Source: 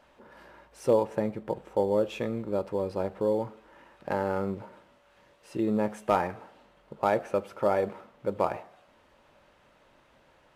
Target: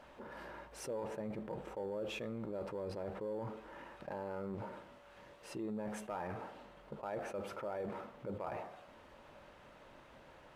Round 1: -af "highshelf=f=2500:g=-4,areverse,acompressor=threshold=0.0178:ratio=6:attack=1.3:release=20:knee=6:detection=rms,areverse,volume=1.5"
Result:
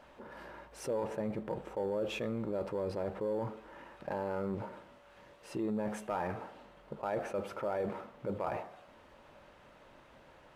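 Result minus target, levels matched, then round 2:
compression: peak gain reduction -6.5 dB
-af "highshelf=f=2500:g=-4,areverse,acompressor=threshold=0.0075:ratio=6:attack=1.3:release=20:knee=6:detection=rms,areverse,volume=1.5"

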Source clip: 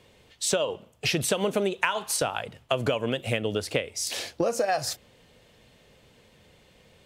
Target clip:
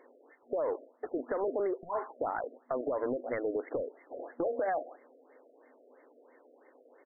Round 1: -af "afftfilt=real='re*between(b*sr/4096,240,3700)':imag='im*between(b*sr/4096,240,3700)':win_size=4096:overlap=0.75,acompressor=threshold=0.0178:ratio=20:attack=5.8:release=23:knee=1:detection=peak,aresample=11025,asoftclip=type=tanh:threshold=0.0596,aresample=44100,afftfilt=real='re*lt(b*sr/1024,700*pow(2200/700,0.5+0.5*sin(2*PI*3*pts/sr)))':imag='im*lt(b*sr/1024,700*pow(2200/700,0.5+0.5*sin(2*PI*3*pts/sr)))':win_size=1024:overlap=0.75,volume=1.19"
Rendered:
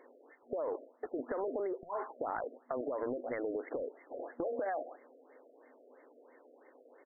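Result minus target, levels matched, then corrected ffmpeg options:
compression: peak gain reduction +5.5 dB
-af "afftfilt=real='re*between(b*sr/4096,240,3700)':imag='im*between(b*sr/4096,240,3700)':win_size=4096:overlap=0.75,acompressor=threshold=0.0355:ratio=20:attack=5.8:release=23:knee=1:detection=peak,aresample=11025,asoftclip=type=tanh:threshold=0.0596,aresample=44100,afftfilt=real='re*lt(b*sr/1024,700*pow(2200/700,0.5+0.5*sin(2*PI*3*pts/sr)))':imag='im*lt(b*sr/1024,700*pow(2200/700,0.5+0.5*sin(2*PI*3*pts/sr)))':win_size=1024:overlap=0.75,volume=1.19"

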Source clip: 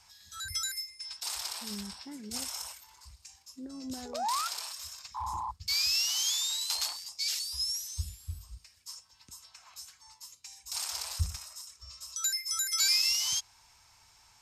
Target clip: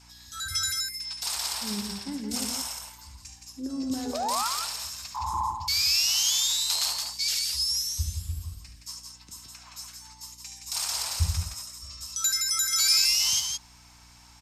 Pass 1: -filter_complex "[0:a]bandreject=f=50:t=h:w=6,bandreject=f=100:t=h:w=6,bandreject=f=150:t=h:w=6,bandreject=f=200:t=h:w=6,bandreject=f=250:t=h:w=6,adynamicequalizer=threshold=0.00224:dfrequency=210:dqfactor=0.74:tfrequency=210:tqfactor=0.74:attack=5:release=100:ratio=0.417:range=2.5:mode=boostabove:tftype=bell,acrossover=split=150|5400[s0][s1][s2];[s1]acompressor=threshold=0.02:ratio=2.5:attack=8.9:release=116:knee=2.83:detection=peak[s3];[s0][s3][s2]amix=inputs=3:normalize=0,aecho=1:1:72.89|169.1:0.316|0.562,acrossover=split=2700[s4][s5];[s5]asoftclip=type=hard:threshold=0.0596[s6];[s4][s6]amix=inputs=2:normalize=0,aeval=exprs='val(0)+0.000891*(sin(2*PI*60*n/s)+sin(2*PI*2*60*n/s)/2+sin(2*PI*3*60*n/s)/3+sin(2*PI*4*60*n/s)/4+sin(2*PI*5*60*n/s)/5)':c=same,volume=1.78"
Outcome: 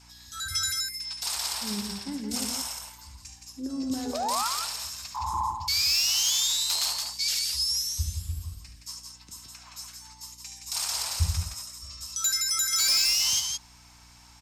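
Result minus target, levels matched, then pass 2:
hard clipper: distortion +33 dB
-filter_complex "[0:a]bandreject=f=50:t=h:w=6,bandreject=f=100:t=h:w=6,bandreject=f=150:t=h:w=6,bandreject=f=200:t=h:w=6,bandreject=f=250:t=h:w=6,adynamicequalizer=threshold=0.00224:dfrequency=210:dqfactor=0.74:tfrequency=210:tqfactor=0.74:attack=5:release=100:ratio=0.417:range=2.5:mode=boostabove:tftype=bell,acrossover=split=150|5400[s0][s1][s2];[s1]acompressor=threshold=0.02:ratio=2.5:attack=8.9:release=116:knee=2.83:detection=peak[s3];[s0][s3][s2]amix=inputs=3:normalize=0,aecho=1:1:72.89|169.1:0.316|0.562,acrossover=split=2700[s4][s5];[s5]asoftclip=type=hard:threshold=0.141[s6];[s4][s6]amix=inputs=2:normalize=0,aeval=exprs='val(0)+0.000891*(sin(2*PI*60*n/s)+sin(2*PI*2*60*n/s)/2+sin(2*PI*3*60*n/s)/3+sin(2*PI*4*60*n/s)/4+sin(2*PI*5*60*n/s)/5)':c=same,volume=1.78"

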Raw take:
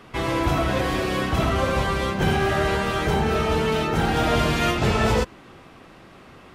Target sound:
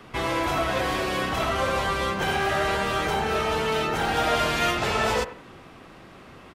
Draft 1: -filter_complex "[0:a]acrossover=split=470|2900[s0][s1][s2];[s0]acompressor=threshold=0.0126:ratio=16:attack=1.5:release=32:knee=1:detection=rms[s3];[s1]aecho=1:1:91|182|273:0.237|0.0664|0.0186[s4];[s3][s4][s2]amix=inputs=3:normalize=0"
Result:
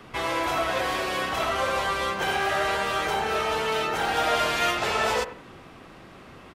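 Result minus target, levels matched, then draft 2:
compression: peak gain reduction +8 dB
-filter_complex "[0:a]acrossover=split=470|2900[s0][s1][s2];[s0]acompressor=threshold=0.0335:ratio=16:attack=1.5:release=32:knee=1:detection=rms[s3];[s1]aecho=1:1:91|182|273:0.237|0.0664|0.0186[s4];[s3][s4][s2]amix=inputs=3:normalize=0"

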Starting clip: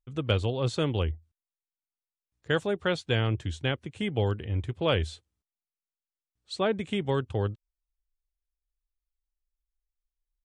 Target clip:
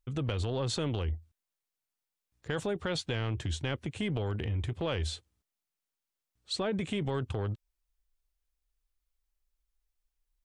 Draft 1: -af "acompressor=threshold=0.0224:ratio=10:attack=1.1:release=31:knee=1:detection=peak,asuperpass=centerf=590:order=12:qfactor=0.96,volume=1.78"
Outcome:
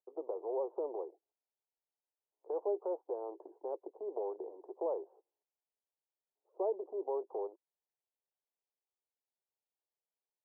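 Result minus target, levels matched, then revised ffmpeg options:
500 Hz band +5.5 dB
-af "acompressor=threshold=0.0224:ratio=10:attack=1.1:release=31:knee=1:detection=peak,volume=1.78"

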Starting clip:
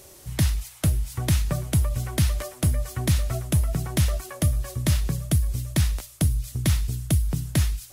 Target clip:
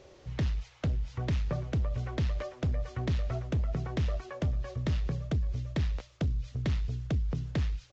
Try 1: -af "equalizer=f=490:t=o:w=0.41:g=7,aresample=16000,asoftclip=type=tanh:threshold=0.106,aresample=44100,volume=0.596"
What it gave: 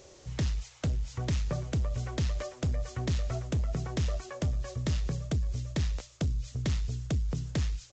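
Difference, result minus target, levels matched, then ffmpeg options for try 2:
4 kHz band +3.5 dB
-af "lowpass=3500,equalizer=f=490:t=o:w=0.41:g=7,aresample=16000,asoftclip=type=tanh:threshold=0.106,aresample=44100,volume=0.596"

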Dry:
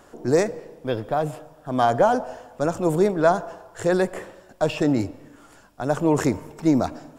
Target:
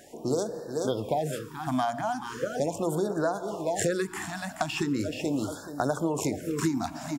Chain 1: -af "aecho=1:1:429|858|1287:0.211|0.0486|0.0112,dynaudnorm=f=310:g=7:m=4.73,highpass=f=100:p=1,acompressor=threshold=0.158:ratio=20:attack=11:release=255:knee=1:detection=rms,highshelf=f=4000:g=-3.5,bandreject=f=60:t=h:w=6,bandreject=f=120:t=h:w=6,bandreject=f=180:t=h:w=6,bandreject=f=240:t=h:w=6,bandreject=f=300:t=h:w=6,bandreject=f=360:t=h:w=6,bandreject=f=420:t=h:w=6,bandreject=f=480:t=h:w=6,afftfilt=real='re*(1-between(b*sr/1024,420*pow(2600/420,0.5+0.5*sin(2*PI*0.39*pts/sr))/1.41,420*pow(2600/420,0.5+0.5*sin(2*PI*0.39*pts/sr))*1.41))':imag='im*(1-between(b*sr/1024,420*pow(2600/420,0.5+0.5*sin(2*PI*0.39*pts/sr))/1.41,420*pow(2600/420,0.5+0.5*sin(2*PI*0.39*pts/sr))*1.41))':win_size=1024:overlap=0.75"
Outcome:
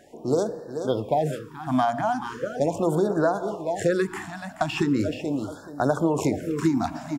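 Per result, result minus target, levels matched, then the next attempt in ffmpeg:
8 kHz band -9.0 dB; compression: peak gain reduction -5.5 dB
-af "aecho=1:1:429|858|1287:0.211|0.0486|0.0112,dynaudnorm=f=310:g=7:m=4.73,highpass=f=100:p=1,acompressor=threshold=0.158:ratio=20:attack=11:release=255:knee=1:detection=rms,highshelf=f=4000:g=6.5,bandreject=f=60:t=h:w=6,bandreject=f=120:t=h:w=6,bandreject=f=180:t=h:w=6,bandreject=f=240:t=h:w=6,bandreject=f=300:t=h:w=6,bandreject=f=360:t=h:w=6,bandreject=f=420:t=h:w=6,bandreject=f=480:t=h:w=6,afftfilt=real='re*(1-between(b*sr/1024,420*pow(2600/420,0.5+0.5*sin(2*PI*0.39*pts/sr))/1.41,420*pow(2600/420,0.5+0.5*sin(2*PI*0.39*pts/sr))*1.41))':imag='im*(1-between(b*sr/1024,420*pow(2600/420,0.5+0.5*sin(2*PI*0.39*pts/sr))/1.41,420*pow(2600/420,0.5+0.5*sin(2*PI*0.39*pts/sr))*1.41))':win_size=1024:overlap=0.75"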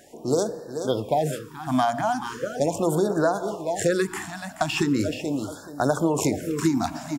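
compression: peak gain reduction -5.5 dB
-af "aecho=1:1:429|858|1287:0.211|0.0486|0.0112,dynaudnorm=f=310:g=7:m=4.73,highpass=f=100:p=1,acompressor=threshold=0.0794:ratio=20:attack=11:release=255:knee=1:detection=rms,highshelf=f=4000:g=6.5,bandreject=f=60:t=h:w=6,bandreject=f=120:t=h:w=6,bandreject=f=180:t=h:w=6,bandreject=f=240:t=h:w=6,bandreject=f=300:t=h:w=6,bandreject=f=360:t=h:w=6,bandreject=f=420:t=h:w=6,bandreject=f=480:t=h:w=6,afftfilt=real='re*(1-between(b*sr/1024,420*pow(2600/420,0.5+0.5*sin(2*PI*0.39*pts/sr))/1.41,420*pow(2600/420,0.5+0.5*sin(2*PI*0.39*pts/sr))*1.41))':imag='im*(1-between(b*sr/1024,420*pow(2600/420,0.5+0.5*sin(2*PI*0.39*pts/sr))/1.41,420*pow(2600/420,0.5+0.5*sin(2*PI*0.39*pts/sr))*1.41))':win_size=1024:overlap=0.75"

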